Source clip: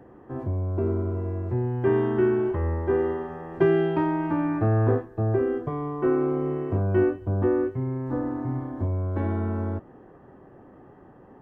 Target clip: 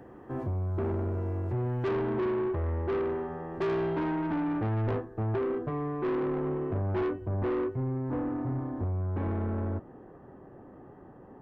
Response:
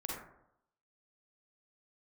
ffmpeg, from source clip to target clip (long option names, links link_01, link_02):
-af "asetnsamples=nb_out_samples=441:pad=0,asendcmd='1.91 highshelf g -7',highshelf=frequency=2100:gain=5,asoftclip=type=tanh:threshold=-26.5dB"